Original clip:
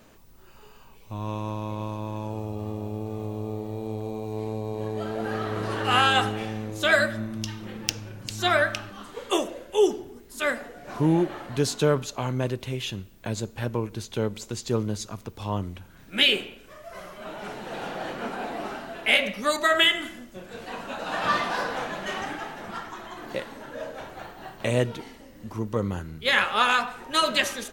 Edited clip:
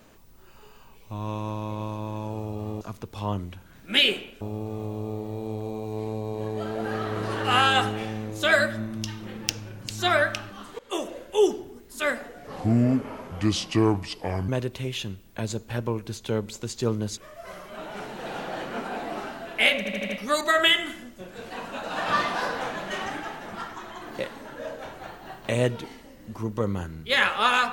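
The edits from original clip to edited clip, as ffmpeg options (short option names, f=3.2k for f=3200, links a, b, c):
-filter_complex "[0:a]asplit=11[a][b][c][d][e][f][g][h][i][j][k];[a]atrim=end=2.812[l];[b]atrim=start=15.048:end=16.652[m];[c]atrim=start=2.808:end=9.19,asetpts=PTS-STARTPTS,afade=t=out:st=6.378:d=0.004:c=hsin:silence=0.11885[n];[d]atrim=start=9.19:end=10.874,asetpts=PTS-STARTPTS,afade=t=in:d=0.36:silence=0.11885[o];[e]atrim=start=10.87:end=12.36,asetpts=PTS-STARTPTS,asetrate=32634,aresample=44100[p];[f]atrim=start=12.356:end=15.052[q];[g]atrim=start=16.648:end=19.332[r];[h]atrim=start=19.248:end=19.332[s];[i]atrim=start=19.248:end=19.332[t];[j]atrim=start=19.248:end=19.332[u];[k]atrim=start=19.248[v];[l][m]acrossfade=d=0.004:c1=hsin:c2=hsin[w];[n][o]concat=n=2:v=0:a=1[x];[w][x]acrossfade=d=0.004:c1=hsin:c2=hsin[y];[y][p]acrossfade=d=0.004:c1=hsin:c2=hsin[z];[z][q]acrossfade=d=0.004:c1=hsin:c2=hsin[aa];[aa][r]acrossfade=d=0.004:c1=hsin:c2=hsin[ab];[ab][s]acrossfade=d=0.004:c1=hsin:c2=hsin[ac];[ac][t]acrossfade=d=0.004:c1=hsin:c2=hsin[ad];[ad][u]acrossfade=d=0.004:c1=hsin:c2=hsin[ae];[ae][v]acrossfade=d=0.004:c1=hsin:c2=hsin"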